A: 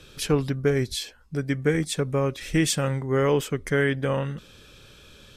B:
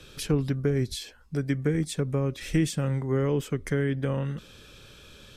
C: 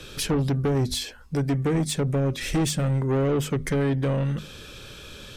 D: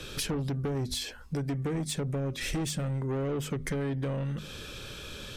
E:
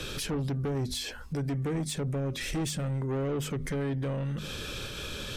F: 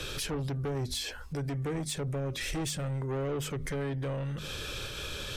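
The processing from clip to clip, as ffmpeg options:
ffmpeg -i in.wav -filter_complex "[0:a]acrossover=split=360[link_01][link_02];[link_02]acompressor=threshold=-33dB:ratio=6[link_03];[link_01][link_03]amix=inputs=2:normalize=0" out.wav
ffmpeg -i in.wav -af "bandreject=frequency=50:width_type=h:width=6,bandreject=frequency=100:width_type=h:width=6,bandreject=frequency=150:width_type=h:width=6,bandreject=frequency=200:width_type=h:width=6,bandreject=frequency=250:width_type=h:width=6,asoftclip=type=tanh:threshold=-27dB,volume=8dB" out.wav
ffmpeg -i in.wav -af "acompressor=threshold=-30dB:ratio=6" out.wav
ffmpeg -i in.wav -af "alimiter=level_in=8dB:limit=-24dB:level=0:latency=1:release=88,volume=-8dB,volume=5dB" out.wav
ffmpeg -i in.wav -af "equalizer=frequency=220:width=1.6:gain=-7.5" out.wav

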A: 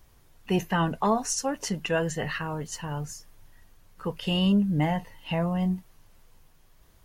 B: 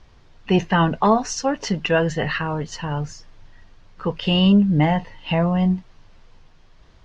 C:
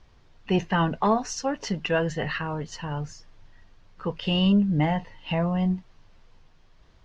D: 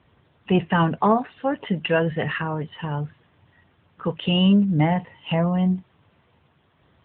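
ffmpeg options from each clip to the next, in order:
ffmpeg -i in.wav -af "lowpass=frequency=5300:width=0.5412,lowpass=frequency=5300:width=1.3066,volume=7.5dB" out.wav
ffmpeg -i in.wav -af "aeval=exprs='0.531*(cos(1*acos(clip(val(0)/0.531,-1,1)))-cos(1*PI/2))+0.00944*(cos(4*acos(clip(val(0)/0.531,-1,1)))-cos(4*PI/2))':channel_layout=same,volume=-5.5dB" out.wav
ffmpeg -i in.wav -af "volume=4dB" -ar 8000 -c:a libopencore_amrnb -b:a 12200 out.amr

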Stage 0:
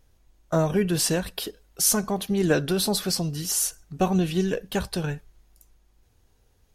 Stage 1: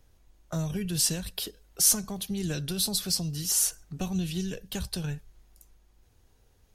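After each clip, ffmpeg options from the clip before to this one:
ffmpeg -i in.wav -filter_complex "[0:a]acrossover=split=160|3000[link_01][link_02][link_03];[link_02]acompressor=threshold=-42dB:ratio=3[link_04];[link_01][link_04][link_03]amix=inputs=3:normalize=0" out.wav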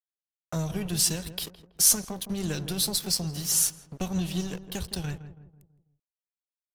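ffmpeg -i in.wav -filter_complex "[0:a]aeval=exprs='sgn(val(0))*max(abs(val(0))-0.00891,0)':channel_layout=same,asplit=2[link_01][link_02];[link_02]adelay=164,lowpass=frequency=1000:poles=1,volume=-10.5dB,asplit=2[link_03][link_04];[link_04]adelay=164,lowpass=frequency=1000:poles=1,volume=0.46,asplit=2[link_05][link_06];[link_06]adelay=164,lowpass=frequency=1000:poles=1,volume=0.46,asplit=2[link_07][link_08];[link_08]adelay=164,lowpass=frequency=1000:poles=1,volume=0.46,asplit=2[link_09][link_10];[link_10]adelay=164,lowpass=frequency=1000:poles=1,volume=0.46[link_11];[link_01][link_03][link_05][link_07][link_09][link_11]amix=inputs=6:normalize=0,volume=2.5dB" out.wav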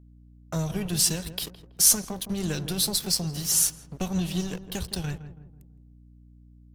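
ffmpeg -i in.wav -af "aeval=exprs='val(0)+0.00251*(sin(2*PI*60*n/s)+sin(2*PI*2*60*n/s)/2+sin(2*PI*3*60*n/s)/3+sin(2*PI*4*60*n/s)/4+sin(2*PI*5*60*n/s)/5)':channel_layout=same,volume=1.5dB" out.wav

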